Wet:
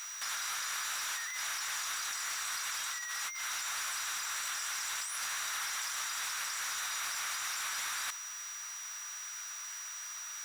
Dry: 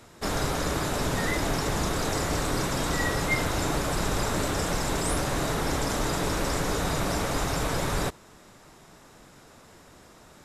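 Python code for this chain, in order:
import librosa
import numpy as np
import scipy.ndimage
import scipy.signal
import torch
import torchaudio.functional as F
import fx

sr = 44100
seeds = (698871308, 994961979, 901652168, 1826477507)

y = scipy.signal.sosfilt(scipy.signal.butter(4, 1300.0, 'highpass', fs=sr, output='sos'), x)
y = fx.over_compress(y, sr, threshold_db=-41.0, ratio=-1.0)
y = fx.dmg_noise_colour(y, sr, seeds[0], colour='violet', level_db=-62.0)
y = np.clip(10.0 ** (34.5 / 20.0) * y, -1.0, 1.0) / 10.0 ** (34.5 / 20.0)
y = y + 10.0 ** (-45.0 / 20.0) * np.sin(2.0 * np.pi * 5800.0 * np.arange(len(y)) / sr)
y = F.gain(torch.from_numpy(y), 3.0).numpy()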